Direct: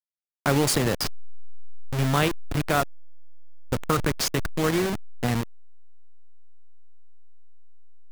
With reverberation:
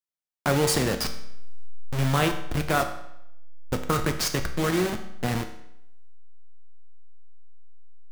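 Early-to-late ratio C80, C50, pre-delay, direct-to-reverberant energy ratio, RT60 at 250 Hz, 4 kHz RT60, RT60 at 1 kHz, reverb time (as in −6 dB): 12.5 dB, 10.0 dB, 6 ms, 6.0 dB, 0.80 s, 0.70 s, 0.75 s, 0.80 s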